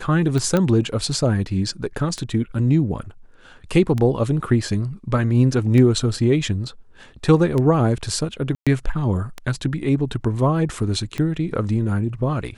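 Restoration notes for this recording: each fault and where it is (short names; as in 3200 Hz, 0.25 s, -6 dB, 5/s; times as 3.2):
tick 33 1/3 rpm -12 dBFS
0.57 pop -8 dBFS
8.55–8.67 gap 0.116 s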